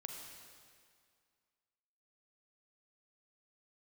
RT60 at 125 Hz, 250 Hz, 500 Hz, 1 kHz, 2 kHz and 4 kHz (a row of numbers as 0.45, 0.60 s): 2.0, 2.1, 2.1, 2.1, 2.0, 1.9 s